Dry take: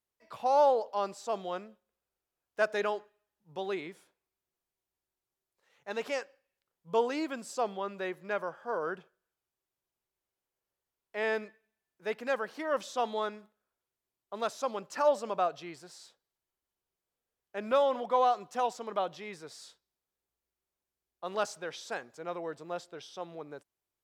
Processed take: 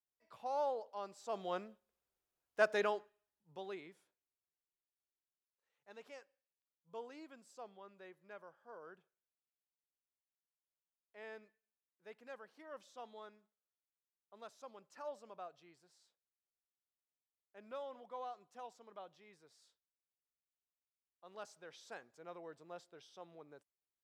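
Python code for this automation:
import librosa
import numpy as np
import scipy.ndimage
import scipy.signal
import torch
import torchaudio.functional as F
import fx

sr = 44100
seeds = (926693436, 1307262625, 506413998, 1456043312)

y = fx.gain(x, sr, db=fx.line((1.1, -13.0), (1.53, -3.0), (2.78, -3.0), (3.79, -12.5), (6.06, -20.0), (21.24, -20.0), (21.88, -13.0)))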